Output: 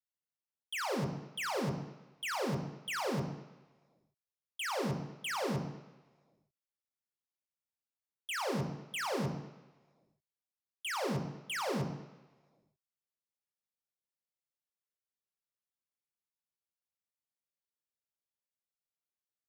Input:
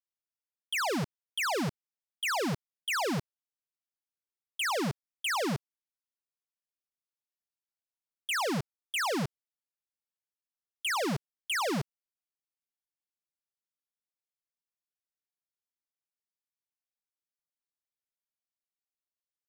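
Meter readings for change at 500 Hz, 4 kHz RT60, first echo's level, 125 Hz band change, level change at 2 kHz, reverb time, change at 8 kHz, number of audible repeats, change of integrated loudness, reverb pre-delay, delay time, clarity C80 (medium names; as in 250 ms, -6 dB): -2.5 dB, 1.3 s, no echo, -0.5 dB, -6.5 dB, 1.1 s, -6.5 dB, no echo, -5.0 dB, 3 ms, no echo, 10.0 dB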